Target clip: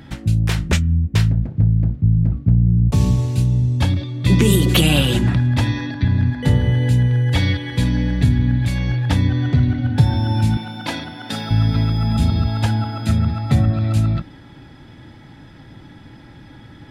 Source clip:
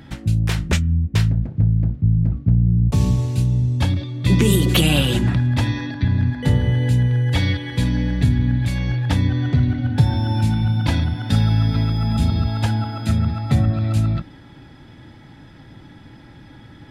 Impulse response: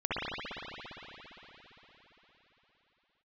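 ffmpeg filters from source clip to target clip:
-filter_complex "[0:a]asettb=1/sr,asplit=3[a][b][c];[a]atrim=end=10.574[d];[b]atrim=start=10.57:end=11.51,asetpts=PTS-STARTPTS,afade=t=in:d=0.004:c=qsin,afade=t=out:st=0.936:d=0.004:c=qsin,highpass=320[e];[c]atrim=start=11.506[f];[d][e]acrossfade=d=0.004:c1=hsin:c2=qsin[g];[g][f]acrossfade=d=0.004:c1=qsin:c2=hsin,volume=1.5dB"

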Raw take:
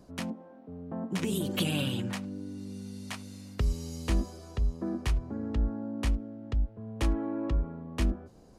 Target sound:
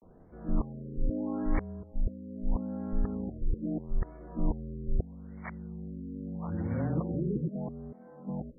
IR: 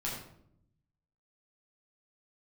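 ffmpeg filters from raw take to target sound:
-af "areverse,afreqshift=-26,afftfilt=real='re*lt(b*sr/1024,540*pow(2300/540,0.5+0.5*sin(2*PI*0.78*pts/sr)))':imag='im*lt(b*sr/1024,540*pow(2300/540,0.5+0.5*sin(2*PI*0.78*pts/sr)))':win_size=1024:overlap=0.75"

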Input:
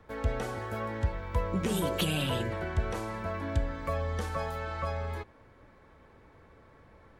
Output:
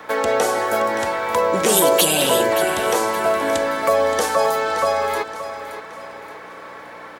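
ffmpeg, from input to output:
-filter_complex "[0:a]apsyclip=24dB,acrossover=split=770|4900[a][b][c];[b]acompressor=threshold=-24dB:ratio=12[d];[a][d][c]amix=inputs=3:normalize=0,aeval=exprs='val(0)+0.0447*(sin(2*PI*60*n/s)+sin(2*PI*2*60*n/s)/2+sin(2*PI*3*60*n/s)/3+sin(2*PI*4*60*n/s)/4+sin(2*PI*5*60*n/s)/5)':c=same,highpass=610,aecho=1:1:573|1146|1719|2292:0.266|0.104|0.0405|0.0158"

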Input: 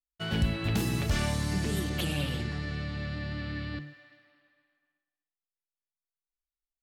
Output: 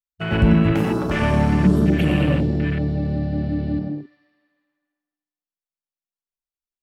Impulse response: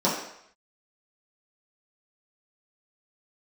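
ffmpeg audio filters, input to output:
-filter_complex "[0:a]asettb=1/sr,asplit=3[a][b][c];[a]atrim=end=0.724[d];[b]atrim=start=0.72:end=1.22,asetpts=PTS-STARTPTS,afade=t=in:d=0.004:c=qsin,afade=t=out:st=0.496:d=0.004:c=qsin,bass=f=250:g=-11,treble=f=4k:g=0[e];[c]atrim=start=1.216[f];[d][e]acrossfade=d=0.004:c1=hsin:c2=qsin[g];[g][f]acrossfade=d=0.004:c1=qsin:c2=hsin,asplit=2[h][i];[1:a]atrim=start_sample=2205,adelay=91[j];[i][j]afir=irnorm=-1:irlink=0,volume=-16.5dB[k];[h][k]amix=inputs=2:normalize=0,acontrast=20,afwtdn=0.0282,volume=5dB"

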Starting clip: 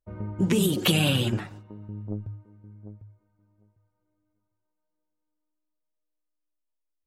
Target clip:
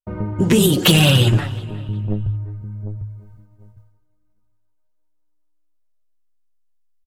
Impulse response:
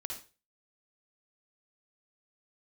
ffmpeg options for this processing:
-filter_complex "[0:a]asplit=2[a][b];[b]adelay=358,lowpass=f=4.3k:p=1,volume=-21dB,asplit=2[c][d];[d]adelay=358,lowpass=f=4.3k:p=1,volume=0.39,asplit=2[e][f];[f]adelay=358,lowpass=f=4.3k:p=1,volume=0.39[g];[c][e][g]amix=inputs=3:normalize=0[h];[a][h]amix=inputs=2:normalize=0,asubboost=boost=6.5:cutoff=110,bandreject=f=50.86:t=h:w=4,bandreject=f=101.72:t=h:w=4,agate=range=-33dB:threshold=-55dB:ratio=3:detection=peak,acontrast=72,aeval=exprs='0.376*(abs(mod(val(0)/0.376+3,4)-2)-1)':c=same,flanger=delay=5.1:depth=3.4:regen=-60:speed=0.92:shape=triangular,asplit=2[i][j];[j]acompressor=threshold=-48dB:ratio=6,volume=2.5dB[k];[i][k]amix=inputs=2:normalize=0,bandreject=f=2.3k:w=21,volume=7dB"

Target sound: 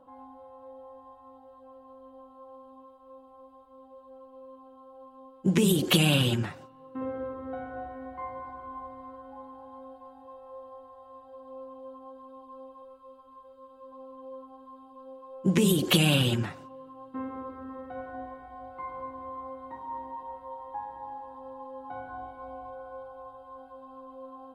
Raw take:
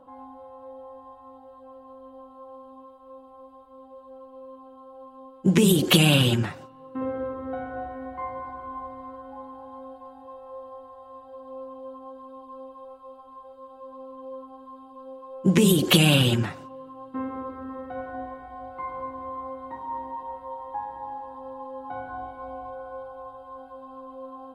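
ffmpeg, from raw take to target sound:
-filter_complex "[0:a]asettb=1/sr,asplit=3[a][b][c];[a]atrim=end=12.824[d];[b]atrim=start=12.82:end=13.92,asetpts=PTS-STARTPTS,afade=t=in:d=0.004:c=qsin,afade=t=out:st=1.096:d=0.004:c=qsin,equalizer=f=760:w=4:g=-10.5[e];[c]atrim=start=13.916[f];[d][e]acrossfade=d=0.004:c1=hsin:c2=qsin[g];[g][f]acrossfade=d=0.004:c1=qsin:c2=hsin,volume=-4.5dB"

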